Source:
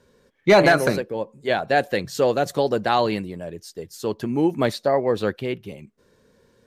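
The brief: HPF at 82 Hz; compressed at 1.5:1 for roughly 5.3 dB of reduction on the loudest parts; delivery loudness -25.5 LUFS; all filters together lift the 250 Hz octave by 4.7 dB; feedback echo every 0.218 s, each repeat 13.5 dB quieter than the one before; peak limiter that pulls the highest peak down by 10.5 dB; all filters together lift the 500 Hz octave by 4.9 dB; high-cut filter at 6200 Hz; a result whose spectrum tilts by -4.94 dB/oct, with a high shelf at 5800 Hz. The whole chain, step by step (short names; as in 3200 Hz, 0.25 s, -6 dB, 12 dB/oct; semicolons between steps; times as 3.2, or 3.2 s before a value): HPF 82 Hz; LPF 6200 Hz; bell 250 Hz +4.5 dB; bell 500 Hz +5 dB; high shelf 5800 Hz +3.5 dB; compressor 1.5:1, threshold -20 dBFS; limiter -16 dBFS; feedback echo 0.218 s, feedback 21%, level -13.5 dB; gain +1 dB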